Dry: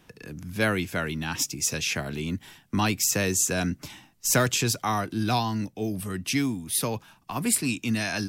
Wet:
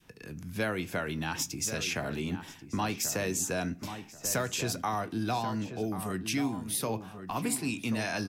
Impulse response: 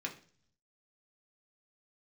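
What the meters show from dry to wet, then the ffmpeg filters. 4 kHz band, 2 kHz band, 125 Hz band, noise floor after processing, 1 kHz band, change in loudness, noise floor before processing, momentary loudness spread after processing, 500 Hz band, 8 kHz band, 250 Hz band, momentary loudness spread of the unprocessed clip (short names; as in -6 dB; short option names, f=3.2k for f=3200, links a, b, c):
-6.5 dB, -6.0 dB, -6.5 dB, -51 dBFS, -4.0 dB, -6.0 dB, -60 dBFS, 8 LU, -4.0 dB, -7.0 dB, -5.0 dB, 11 LU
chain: -filter_complex "[0:a]adynamicequalizer=threshold=0.0126:dfrequency=700:dqfactor=0.7:tfrequency=700:tqfactor=0.7:attack=5:release=100:ratio=0.375:range=3:mode=boostabove:tftype=bell,acompressor=threshold=-26dB:ratio=3,asplit=2[a][b];[b]adelay=1086,lowpass=f=1.8k:p=1,volume=-9.5dB,asplit=2[c][d];[d]adelay=1086,lowpass=f=1.8k:p=1,volume=0.3,asplit=2[e][f];[f]adelay=1086,lowpass=f=1.8k:p=1,volume=0.3[g];[a][c][e][g]amix=inputs=4:normalize=0,asplit=2[h][i];[1:a]atrim=start_sample=2205,adelay=19[j];[i][j]afir=irnorm=-1:irlink=0,volume=-14dB[k];[h][k]amix=inputs=2:normalize=0,volume=-3.5dB"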